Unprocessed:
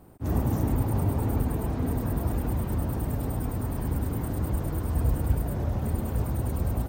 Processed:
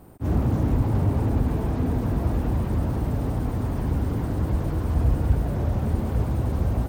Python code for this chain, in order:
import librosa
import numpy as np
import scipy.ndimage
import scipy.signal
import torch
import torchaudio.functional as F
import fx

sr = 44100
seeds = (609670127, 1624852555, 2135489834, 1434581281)

y = fx.slew_limit(x, sr, full_power_hz=16.0)
y = y * librosa.db_to_amplitude(4.0)